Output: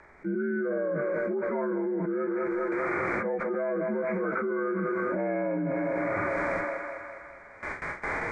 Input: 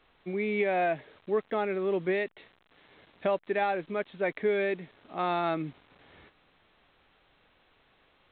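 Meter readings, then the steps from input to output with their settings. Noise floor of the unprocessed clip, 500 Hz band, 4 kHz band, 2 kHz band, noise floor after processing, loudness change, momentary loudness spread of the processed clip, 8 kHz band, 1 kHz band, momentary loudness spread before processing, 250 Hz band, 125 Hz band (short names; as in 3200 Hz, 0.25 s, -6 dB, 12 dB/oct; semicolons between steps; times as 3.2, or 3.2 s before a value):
-67 dBFS, +2.0 dB, under -10 dB, +4.0 dB, -49 dBFS, +1.0 dB, 7 LU, n/a, -0.5 dB, 9 LU, +6.5 dB, +4.5 dB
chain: inharmonic rescaling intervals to 81%; rotary speaker horn 0.6 Hz; gate with hold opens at -59 dBFS; high shelf 2200 Hz +11 dB; harmonic-percussive split percussive -10 dB; limiter -24.5 dBFS, peak gain reduction 6.5 dB; treble ducked by the level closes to 1800 Hz, closed at -28 dBFS; air absorption 82 m; thinning echo 0.204 s, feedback 63%, high-pass 330 Hz, level -12 dB; fast leveller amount 100%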